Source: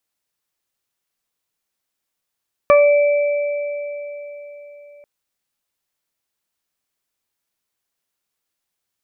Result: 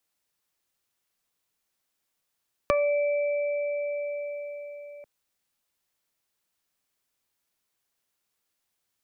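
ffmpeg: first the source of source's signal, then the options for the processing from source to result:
-f lavfi -i "aevalsrc='0.422*pow(10,-3*t/4.05)*sin(2*PI*581*t)+0.282*pow(10,-3*t/0.29)*sin(2*PI*1162*t)+0.0531*pow(10,-3*t/0.22)*sin(2*PI*1743*t)+0.1*pow(10,-3*t/3.8)*sin(2*PI*2324*t)':d=2.34:s=44100"
-filter_complex "[0:a]acrossover=split=120[s0][s1];[s1]acompressor=threshold=0.0355:ratio=2.5[s2];[s0][s2]amix=inputs=2:normalize=0"

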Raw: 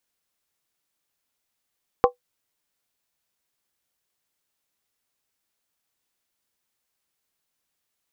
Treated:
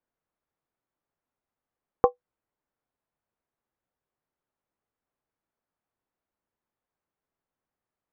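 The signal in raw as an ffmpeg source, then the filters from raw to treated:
-f lavfi -i "aevalsrc='0.335*pow(10,-3*t/0.12)*sin(2*PI*493*t)+0.237*pow(10,-3*t/0.095)*sin(2*PI*785.8*t)+0.168*pow(10,-3*t/0.082)*sin(2*PI*1053*t)+0.119*pow(10,-3*t/0.079)*sin(2*PI*1131.9*t)':d=0.63:s=44100"
-af "lowpass=1200"

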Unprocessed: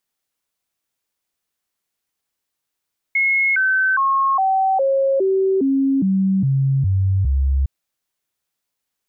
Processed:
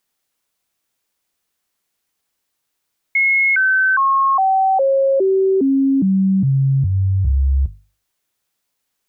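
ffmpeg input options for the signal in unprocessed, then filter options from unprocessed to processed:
-f lavfi -i "aevalsrc='0.2*clip(min(mod(t,0.41),0.41-mod(t,0.41))/0.005,0,1)*sin(2*PI*2170*pow(2,-floor(t/0.41)/2)*mod(t,0.41))':d=4.51:s=44100"
-filter_complex "[0:a]bandreject=f=50:t=h:w=6,bandreject=f=100:t=h:w=6,bandreject=f=150:t=h:w=6,asplit=2[s0][s1];[s1]alimiter=limit=0.0708:level=0:latency=1:release=15,volume=0.891[s2];[s0][s2]amix=inputs=2:normalize=0"

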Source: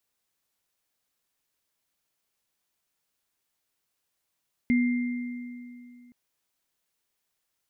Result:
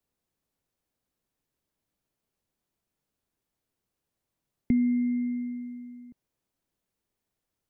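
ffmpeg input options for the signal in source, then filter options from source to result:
-f lavfi -i "aevalsrc='0.119*pow(10,-3*t/2.64)*sin(2*PI*244*t)+0.0335*pow(10,-3*t/2.18)*sin(2*PI*2100*t)':d=1.42:s=44100"
-filter_complex "[0:a]tiltshelf=f=680:g=8,acrossover=split=190[s0][s1];[s1]acompressor=threshold=0.0398:ratio=6[s2];[s0][s2]amix=inputs=2:normalize=0"

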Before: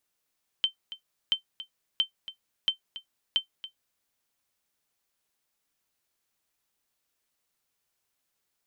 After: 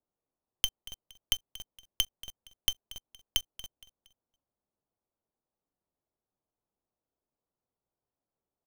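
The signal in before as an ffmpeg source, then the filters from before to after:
-f lavfi -i "aevalsrc='0.178*(sin(2*PI*3100*mod(t,0.68))*exp(-6.91*mod(t,0.68)/0.11)+0.178*sin(2*PI*3100*max(mod(t,0.68)-0.28,0))*exp(-6.91*max(mod(t,0.68)-0.28,0)/0.11))':d=3.4:s=44100"
-filter_complex "[0:a]acrossover=split=140|990[s0][s1][s2];[s2]acrusher=bits=4:dc=4:mix=0:aa=0.000001[s3];[s0][s1][s3]amix=inputs=3:normalize=0,aecho=1:1:233|466|699:0.119|0.0428|0.0154"

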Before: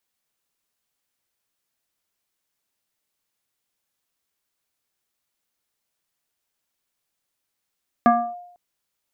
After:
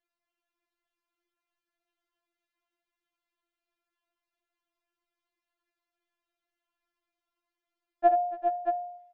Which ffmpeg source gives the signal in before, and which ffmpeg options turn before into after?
-f lavfi -i "aevalsrc='0.335*pow(10,-3*t/0.73)*sin(2*PI*709*t+1.2*clip(1-t/0.29,0,1)*sin(2*PI*0.67*709*t))':d=0.5:s=44100"
-af "lowpass=2500,aecho=1:1:72|283|392|412|625:0.282|0.141|0.237|0.316|0.422,afftfilt=real='re*4*eq(mod(b,16),0)':imag='im*4*eq(mod(b,16),0)':win_size=2048:overlap=0.75"

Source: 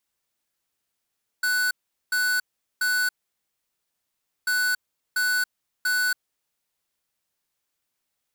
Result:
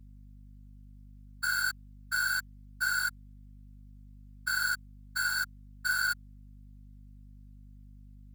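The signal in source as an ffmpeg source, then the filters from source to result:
-f lavfi -i "aevalsrc='0.0708*(2*lt(mod(1490*t,1),0.5)-1)*clip(min(mod(mod(t,3.04),0.69),0.28-mod(mod(t,3.04),0.69))/0.005,0,1)*lt(mod(t,3.04),2.07)':d=6.08:s=44100"
-af "highpass=410,afftfilt=real='hypot(re,im)*cos(2*PI*random(0))':imag='hypot(re,im)*sin(2*PI*random(1))':win_size=512:overlap=0.75,aeval=exprs='val(0)+0.00316*(sin(2*PI*50*n/s)+sin(2*PI*2*50*n/s)/2+sin(2*PI*3*50*n/s)/3+sin(2*PI*4*50*n/s)/4+sin(2*PI*5*50*n/s)/5)':c=same"

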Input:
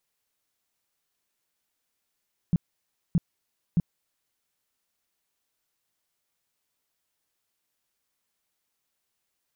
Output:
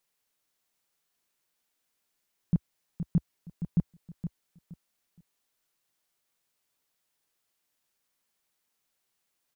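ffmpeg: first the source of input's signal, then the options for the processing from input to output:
-f lavfi -i "aevalsrc='0.141*sin(2*PI*170*mod(t,0.62))*lt(mod(t,0.62),5/170)':d=1.86:s=44100"
-af "equalizer=f=68:t=o:w=0.7:g=-7.5,aecho=1:1:469|938|1407:0.335|0.0837|0.0209"

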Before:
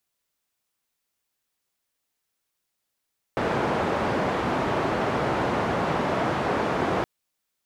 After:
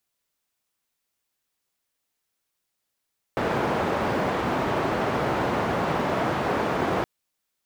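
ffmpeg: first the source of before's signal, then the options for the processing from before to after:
-f lavfi -i "anoisesrc=c=white:d=3.67:r=44100:seed=1,highpass=f=93,lowpass=f=900,volume=-6.3dB"
-af "acrusher=bits=8:mode=log:mix=0:aa=0.000001"

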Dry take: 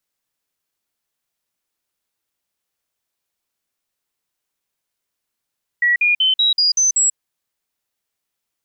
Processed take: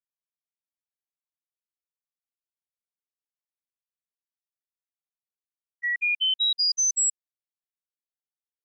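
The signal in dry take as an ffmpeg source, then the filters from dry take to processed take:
-f lavfi -i "aevalsrc='0.251*clip(min(mod(t,0.19),0.14-mod(t,0.19))/0.005,0,1)*sin(2*PI*1930*pow(2,floor(t/0.19)/3)*mod(t,0.19))':d=1.33:s=44100"
-af "agate=range=0.0398:threshold=0.158:ratio=16:detection=peak,equalizer=f=1800:t=o:w=0.74:g=-7.5,acompressor=threshold=0.0562:ratio=2"

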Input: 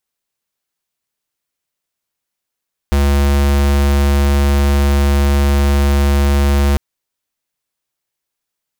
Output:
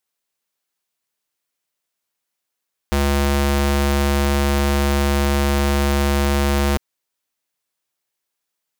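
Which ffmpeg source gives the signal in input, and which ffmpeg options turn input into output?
-f lavfi -i "aevalsrc='0.251*(2*lt(mod(70.5*t,1),0.5)-1)':d=3.85:s=44100"
-af "lowshelf=f=150:g=-9"

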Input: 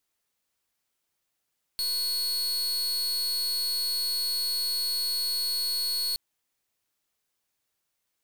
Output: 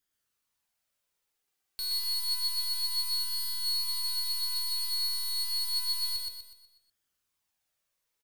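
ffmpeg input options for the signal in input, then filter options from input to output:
-f lavfi -i "aevalsrc='0.0376*(2*lt(mod(4360*t,1),0.41)-1)':d=4.37:s=44100"
-filter_complex "[0:a]bandreject=f=50:t=h:w=6,bandreject=f=100:t=h:w=6,bandreject=f=150:t=h:w=6,bandreject=f=200:t=h:w=6,bandreject=f=250:t=h:w=6,bandreject=f=300:t=h:w=6,bandreject=f=350:t=h:w=6,bandreject=f=400:t=h:w=6,bandreject=f=450:t=h:w=6,bandreject=f=500:t=h:w=6,flanger=delay=0.6:depth=2:regen=43:speed=0.29:shape=sinusoidal,asplit=2[s0][s1];[s1]aecho=0:1:123|246|369|492|615|738:0.708|0.304|0.131|0.0563|0.0242|0.0104[s2];[s0][s2]amix=inputs=2:normalize=0"

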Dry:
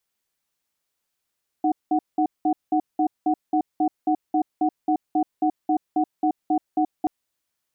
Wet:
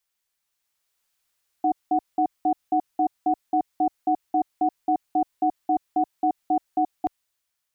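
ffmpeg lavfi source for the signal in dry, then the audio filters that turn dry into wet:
-f lavfi -i "aevalsrc='0.1*(sin(2*PI*309*t)+sin(2*PI*740*t))*clip(min(mod(t,0.27),0.08-mod(t,0.27))/0.005,0,1)':d=5.43:s=44100"
-af "equalizer=f=250:w=0.49:g=-9,dynaudnorm=f=210:g=7:m=1.78"

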